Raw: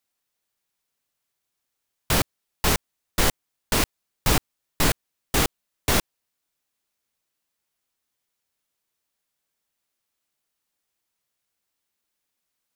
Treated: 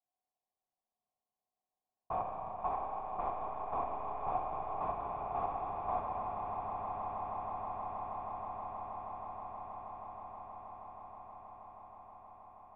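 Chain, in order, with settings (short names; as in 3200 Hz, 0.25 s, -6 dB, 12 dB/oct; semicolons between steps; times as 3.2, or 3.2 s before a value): vocal tract filter a; low-pass opened by the level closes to 440 Hz, open at -35.5 dBFS; swelling echo 0.159 s, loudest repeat 8, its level -12.5 dB; Schroeder reverb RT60 2.2 s, combs from 29 ms, DRR 1 dB; three-band squash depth 40%; gain +1.5 dB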